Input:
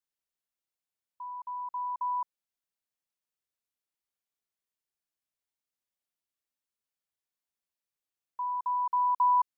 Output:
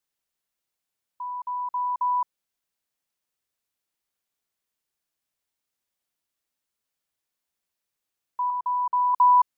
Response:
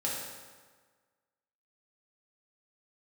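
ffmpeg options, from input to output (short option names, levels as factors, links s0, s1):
-filter_complex "[0:a]asettb=1/sr,asplit=3[s0][s1][s2];[s0]atrim=end=8.504[s3];[s1]atrim=start=8.5:end=9.14,asetpts=PTS-STARTPTS,afade=t=in:d=0.004:c=qsin,afade=t=out:st=0.636:d=0.004:c=qsin,lowpass=f=1000:p=1[s4];[s2]atrim=start=9.136[s5];[s3][s4]acrossfade=d=0.004:c1=hsin:c2=qsin[s6];[s6][s5]acrossfade=d=0.004:c1=qsin:c2=hsin,volume=2.24"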